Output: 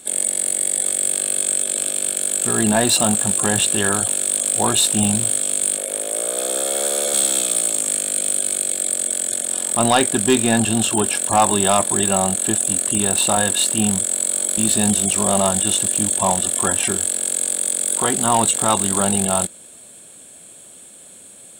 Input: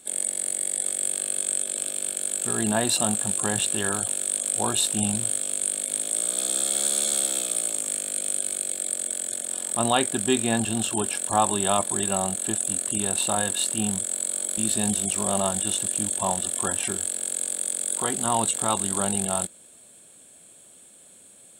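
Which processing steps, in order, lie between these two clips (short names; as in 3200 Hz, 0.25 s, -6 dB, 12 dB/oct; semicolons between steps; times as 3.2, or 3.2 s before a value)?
5.77–7.14 graphic EQ 125/250/500/4000/8000 Hz -11/-4/+8/-6/-5 dB; soft clip -14.5 dBFS, distortion -16 dB; gain +8.5 dB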